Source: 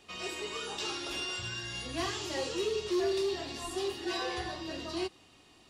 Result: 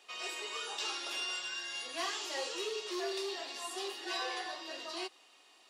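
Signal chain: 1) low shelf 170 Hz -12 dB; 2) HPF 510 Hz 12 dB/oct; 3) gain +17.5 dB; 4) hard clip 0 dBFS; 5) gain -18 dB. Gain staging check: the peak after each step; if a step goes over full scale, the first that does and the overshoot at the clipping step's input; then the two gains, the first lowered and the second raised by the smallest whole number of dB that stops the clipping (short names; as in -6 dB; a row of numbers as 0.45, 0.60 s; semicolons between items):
-24.0, -23.0, -5.5, -5.5, -23.5 dBFS; no overload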